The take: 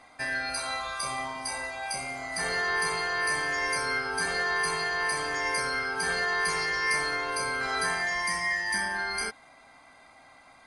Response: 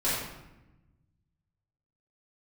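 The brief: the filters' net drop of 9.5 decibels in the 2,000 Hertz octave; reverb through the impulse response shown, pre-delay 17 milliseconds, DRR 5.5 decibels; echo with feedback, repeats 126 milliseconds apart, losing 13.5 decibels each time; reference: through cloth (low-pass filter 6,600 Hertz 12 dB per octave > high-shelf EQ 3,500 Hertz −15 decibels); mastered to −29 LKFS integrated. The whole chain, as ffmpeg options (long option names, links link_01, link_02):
-filter_complex "[0:a]equalizer=frequency=2000:width_type=o:gain=-7.5,aecho=1:1:126|252:0.211|0.0444,asplit=2[link_01][link_02];[1:a]atrim=start_sample=2205,adelay=17[link_03];[link_02][link_03]afir=irnorm=-1:irlink=0,volume=-16dB[link_04];[link_01][link_04]amix=inputs=2:normalize=0,lowpass=6600,highshelf=frequency=3500:gain=-15,volume=5dB"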